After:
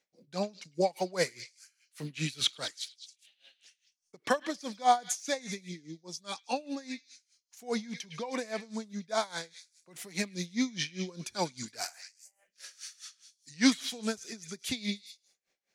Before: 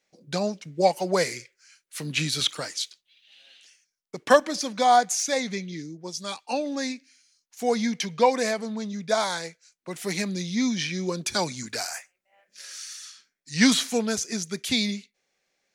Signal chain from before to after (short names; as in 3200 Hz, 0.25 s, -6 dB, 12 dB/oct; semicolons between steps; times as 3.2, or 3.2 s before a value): delay with a stepping band-pass 0.104 s, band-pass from 2700 Hz, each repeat 0.7 oct, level -7.5 dB; dB-linear tremolo 4.9 Hz, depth 21 dB; gain -2.5 dB